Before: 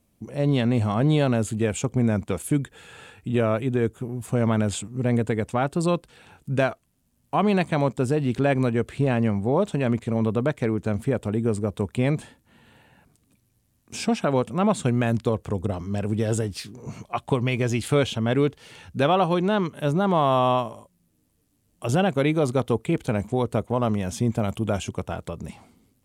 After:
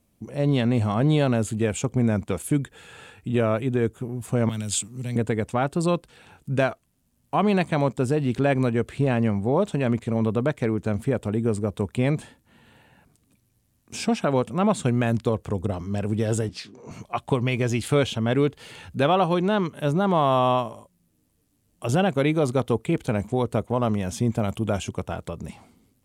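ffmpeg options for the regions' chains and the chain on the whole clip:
-filter_complex "[0:a]asettb=1/sr,asplit=3[a][b][c];[a]atrim=end=4.494[d];[b]atrim=start=4.49:end=5.16,asetpts=PTS-STARTPTS,afade=t=in:d=0.004:c=qsin,afade=t=out:st=0.666:d=0.004:c=qsin,highpass=120,highshelf=f=2.1k:g=8,acrossover=split=170|3000[e][f][g];[f]acompressor=threshold=-46dB:ratio=2.5:attack=3.2:release=140:knee=2.83:detection=peak[h];[e][h][g]amix=inputs=3:normalize=0[i];[c]atrim=start=5.156[j];[d][i]acrossfade=d=0.004:c1=hsin:c2=qsin[k];[k][j]acrossfade=d=0.004:c1=qsin:c2=hsin,asettb=1/sr,asplit=3[l][m][n];[l]atrim=end=16.494[o];[m]atrim=start=16.49:end=16.91,asetpts=PTS-STARTPTS,afade=t=in:d=0.004:c=qsin,afade=t=out:st=0.416:d=0.004:c=qsin,acrossover=split=230 6800:gain=0.251 1 0.126[p][q][r];[p][q][r]amix=inputs=3:normalize=0,bandreject=f=60:t=h:w=6,bandreject=f=120:t=h:w=6,bandreject=f=180:t=h:w=6,bandreject=f=240:t=h:w=6,bandreject=f=300:t=h:w=6,bandreject=f=360:t=h:w=6,bandreject=f=420:t=h:w=6[s];[n]atrim=start=16.906[t];[o][s]acrossfade=d=0.004:c1=hsin:c2=qsin[u];[u][t]acrossfade=d=0.004:c1=qsin:c2=hsin,asettb=1/sr,asplit=3[v][w][x];[v]atrim=end=18.464[y];[w]atrim=start=18.46:end=19.08,asetpts=PTS-STARTPTS,afade=t=in:d=0.004:c=qsin,afade=t=out:st=0.616:d=0.004:c=qsin,bandreject=f=5.7k:w=10,acompressor=mode=upward:threshold=-36dB:ratio=2.5:attack=3.2:release=140:knee=2.83:detection=peak[z];[x]atrim=start=19.076[aa];[y][z]acrossfade=d=0.004:c1=hsin:c2=qsin[ab];[ab][aa]acrossfade=d=0.004:c1=qsin:c2=hsin"

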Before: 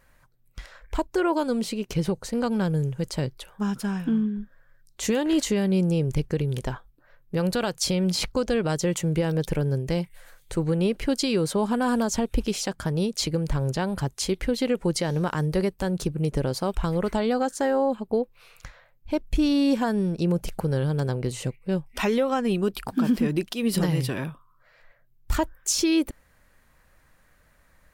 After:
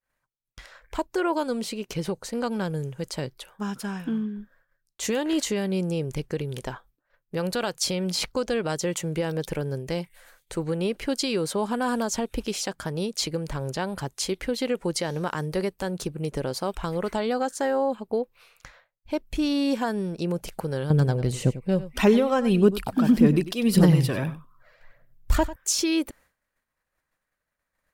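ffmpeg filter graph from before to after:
-filter_complex "[0:a]asettb=1/sr,asplit=3[a][b][c];[a]atrim=end=20.904[d];[b]atrim=start=20.9:end=25.56,asetpts=PTS-STARTPTS,afade=t=in:d=0.004:c=qsin,afade=t=out:st=4.656:d=0.004:c=qsin,lowshelf=f=370:g=10.5,aphaser=in_gain=1:out_gain=1:delay=1.9:decay=0.4:speed=1.7:type=triangular,aecho=1:1:96:0.178,atrim=end_sample=205506[e];[c]atrim=start=25.556[f];[d][e]acrossfade=d=0.004:c1=hsin:c2=qsin[g];[g][f]acrossfade=d=0.004:c1=qsin:c2=hsin,agate=range=-33dB:threshold=-47dB:ratio=3:detection=peak,lowshelf=f=190:g=-10"

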